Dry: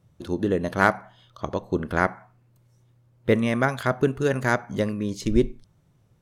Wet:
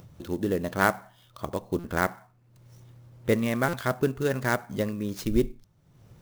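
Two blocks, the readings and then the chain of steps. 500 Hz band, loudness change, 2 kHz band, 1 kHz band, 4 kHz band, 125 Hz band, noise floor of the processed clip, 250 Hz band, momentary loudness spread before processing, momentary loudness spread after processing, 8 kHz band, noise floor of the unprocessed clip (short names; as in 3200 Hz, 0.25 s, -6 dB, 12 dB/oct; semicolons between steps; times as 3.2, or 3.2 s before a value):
-3.5 dB, -3.5 dB, -3.5 dB, -3.5 dB, -2.0 dB, -3.5 dB, -62 dBFS, -3.5 dB, 10 LU, 10 LU, +1.5 dB, -62 dBFS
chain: bell 5800 Hz +4 dB 0.77 oct; upward compressor, threshold -35 dBFS; stuck buffer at 1.79/3.68, samples 256, times 8; clock jitter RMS 0.025 ms; gain -3.5 dB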